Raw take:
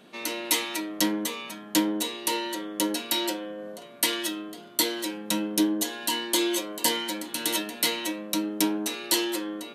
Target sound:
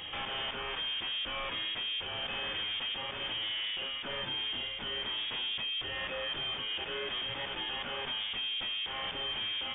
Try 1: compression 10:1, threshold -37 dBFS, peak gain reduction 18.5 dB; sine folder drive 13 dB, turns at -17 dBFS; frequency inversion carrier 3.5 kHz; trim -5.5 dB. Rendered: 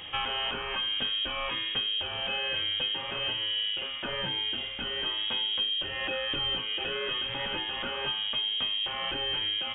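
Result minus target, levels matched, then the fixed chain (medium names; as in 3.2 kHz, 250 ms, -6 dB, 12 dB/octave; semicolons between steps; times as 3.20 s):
sine folder: distortion -10 dB
compression 10:1, threshold -37 dBFS, peak gain reduction 18.5 dB; sine folder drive 13 dB, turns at -27 dBFS; frequency inversion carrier 3.5 kHz; trim -5.5 dB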